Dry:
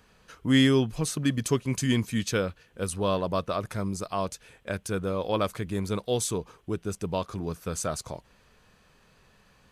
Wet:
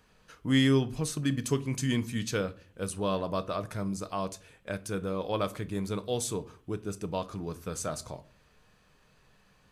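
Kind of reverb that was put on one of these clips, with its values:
rectangular room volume 280 cubic metres, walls furnished, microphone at 0.48 metres
level −4 dB

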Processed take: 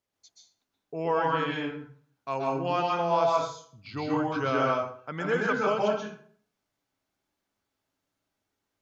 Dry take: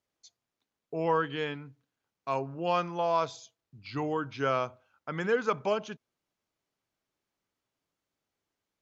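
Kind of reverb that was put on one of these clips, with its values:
dense smooth reverb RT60 0.53 s, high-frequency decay 0.7×, pre-delay 115 ms, DRR −3 dB
level −1 dB

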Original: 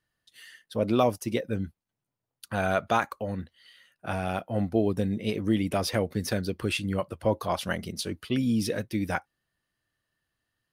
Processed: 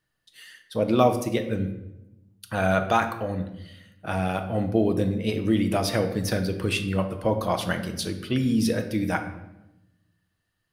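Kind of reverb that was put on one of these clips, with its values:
rectangular room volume 350 cubic metres, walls mixed, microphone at 0.57 metres
level +2 dB

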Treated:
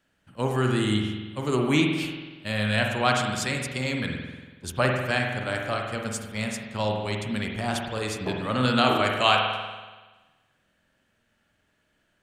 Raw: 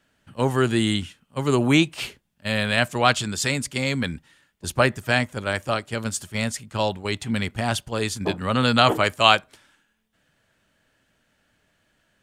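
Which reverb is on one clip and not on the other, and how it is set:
spring reverb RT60 1.3 s, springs 47 ms, chirp 60 ms, DRR 1 dB
level −5.5 dB

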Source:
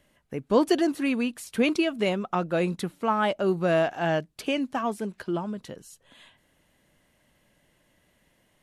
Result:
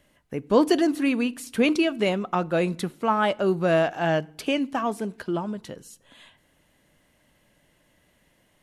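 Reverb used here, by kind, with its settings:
feedback delay network reverb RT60 0.63 s, low-frequency decay 1.55×, high-frequency decay 0.8×, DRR 20 dB
level +2 dB

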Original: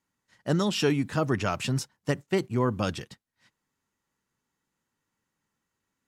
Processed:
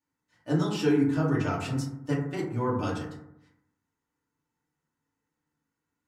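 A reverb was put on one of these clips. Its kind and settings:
feedback delay network reverb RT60 0.8 s, low-frequency decay 1.2×, high-frequency decay 0.3×, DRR −7.5 dB
level −11 dB

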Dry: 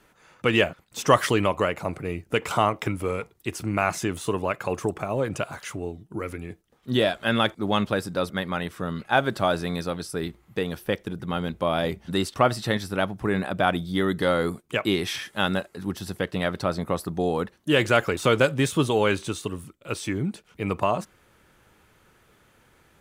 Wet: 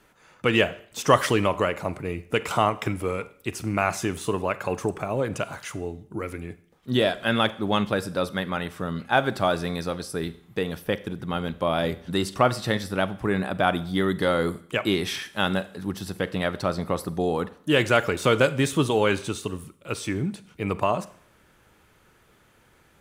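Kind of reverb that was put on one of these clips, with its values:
four-comb reverb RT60 0.58 s, combs from 32 ms, DRR 15.5 dB

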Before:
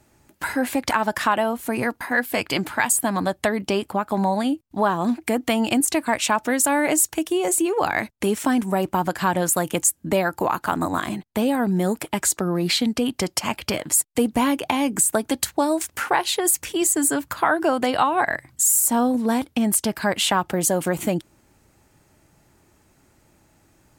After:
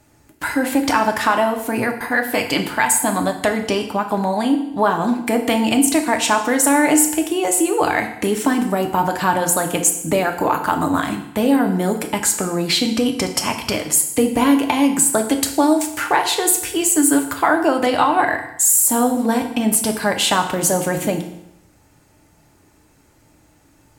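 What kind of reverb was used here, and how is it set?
feedback delay network reverb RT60 0.82 s, low-frequency decay 1×, high-frequency decay 0.95×, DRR 4 dB
level +2.5 dB

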